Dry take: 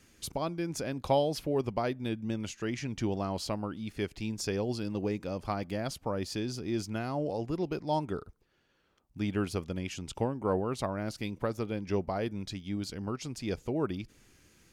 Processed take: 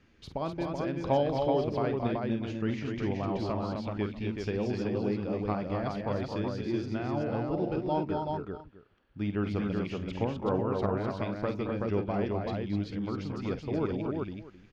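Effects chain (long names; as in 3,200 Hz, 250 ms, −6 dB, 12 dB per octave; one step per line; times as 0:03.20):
high-frequency loss of the air 250 metres
on a send: multi-tap delay 49/222/252/378/640 ms −11/−10/−5/−3.5/−19 dB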